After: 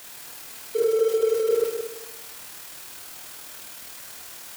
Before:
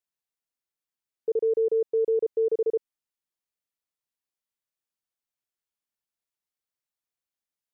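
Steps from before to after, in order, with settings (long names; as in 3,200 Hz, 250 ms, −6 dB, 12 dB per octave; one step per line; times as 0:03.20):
converter with a step at zero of −34.5 dBFS
low-shelf EQ 140 Hz −5.5 dB
mains-hum notches 50/100/150/200/250/300/350/400/450 Hz
in parallel at −5.5 dB: centre clipping without the shift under −32.5 dBFS
on the sum: echo machine with several playback heads 98 ms, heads first and third, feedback 44%, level −8.5 dB
on a send at −1 dB: convolution reverb RT60 0.30 s, pre-delay 48 ms
on the sum: time stretch by overlap-add 0.59×, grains 51 ms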